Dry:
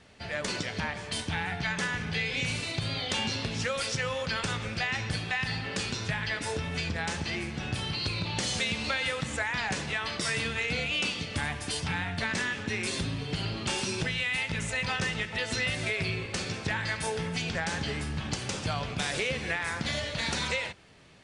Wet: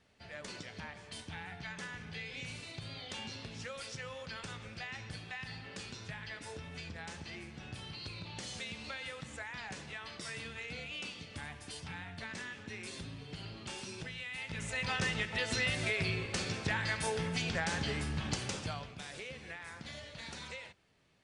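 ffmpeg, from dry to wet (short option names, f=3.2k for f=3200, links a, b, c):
-af "volume=-3dB,afade=t=in:st=14.34:d=0.72:silence=0.316228,afade=t=out:st=18.37:d=0.55:silence=0.251189"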